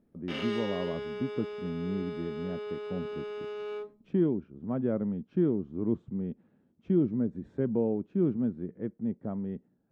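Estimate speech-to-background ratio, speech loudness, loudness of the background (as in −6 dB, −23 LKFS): 5.5 dB, −32.5 LKFS, −38.0 LKFS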